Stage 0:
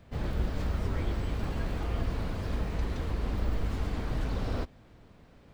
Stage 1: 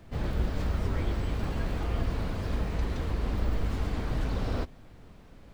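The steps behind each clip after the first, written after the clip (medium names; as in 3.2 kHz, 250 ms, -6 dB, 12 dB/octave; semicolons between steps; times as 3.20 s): added noise brown -53 dBFS; trim +1.5 dB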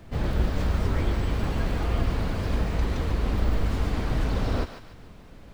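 thinning echo 146 ms, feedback 42%, high-pass 930 Hz, level -7.5 dB; trim +4.5 dB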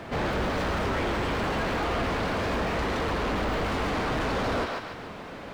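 overdrive pedal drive 33 dB, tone 1.8 kHz, clips at -10.5 dBFS; trim -8.5 dB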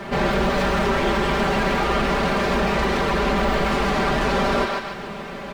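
comb 5.1 ms, depth 86%; trim +5 dB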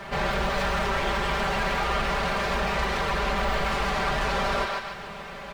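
peaking EQ 280 Hz -12 dB 1.2 oct; trim -3 dB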